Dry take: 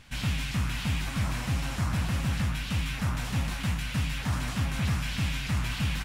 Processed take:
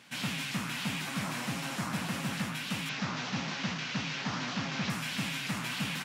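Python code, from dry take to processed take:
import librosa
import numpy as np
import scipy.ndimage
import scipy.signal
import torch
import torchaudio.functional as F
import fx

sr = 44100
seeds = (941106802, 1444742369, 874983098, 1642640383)

y = fx.delta_mod(x, sr, bps=32000, step_db=-33.0, at=(2.89, 4.9))
y = scipy.signal.sosfilt(scipy.signal.butter(4, 170.0, 'highpass', fs=sr, output='sos'), y)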